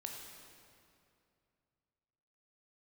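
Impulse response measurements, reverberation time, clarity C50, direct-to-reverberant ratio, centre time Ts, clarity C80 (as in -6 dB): 2.5 s, 2.0 dB, 0.5 dB, 83 ms, 3.5 dB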